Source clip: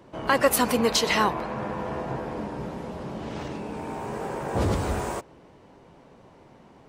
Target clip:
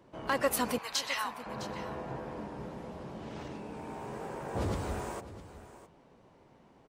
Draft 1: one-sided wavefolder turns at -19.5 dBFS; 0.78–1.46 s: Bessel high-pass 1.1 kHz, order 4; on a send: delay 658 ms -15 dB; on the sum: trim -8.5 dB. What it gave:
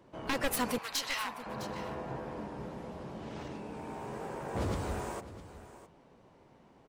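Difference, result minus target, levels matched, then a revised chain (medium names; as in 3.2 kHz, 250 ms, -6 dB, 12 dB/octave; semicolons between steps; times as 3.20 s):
one-sided wavefolder: distortion +24 dB
one-sided wavefolder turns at -10 dBFS; 0.78–1.46 s: Bessel high-pass 1.1 kHz, order 4; on a send: delay 658 ms -15 dB; on the sum: trim -8.5 dB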